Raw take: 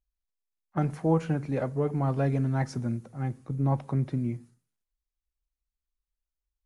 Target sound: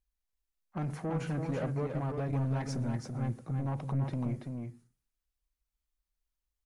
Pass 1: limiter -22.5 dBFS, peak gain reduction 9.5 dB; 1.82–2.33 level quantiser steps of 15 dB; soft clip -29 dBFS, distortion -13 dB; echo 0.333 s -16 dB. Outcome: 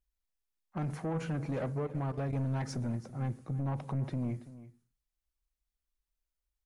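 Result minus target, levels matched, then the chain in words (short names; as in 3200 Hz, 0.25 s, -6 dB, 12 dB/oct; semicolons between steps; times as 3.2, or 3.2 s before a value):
echo-to-direct -11 dB
limiter -22.5 dBFS, peak gain reduction 9.5 dB; 1.82–2.33 level quantiser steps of 15 dB; soft clip -29 dBFS, distortion -13 dB; echo 0.333 s -5 dB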